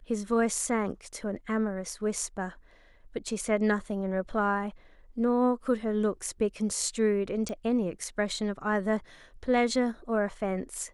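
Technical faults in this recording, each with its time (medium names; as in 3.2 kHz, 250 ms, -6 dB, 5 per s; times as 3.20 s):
7.49 s: pop -23 dBFS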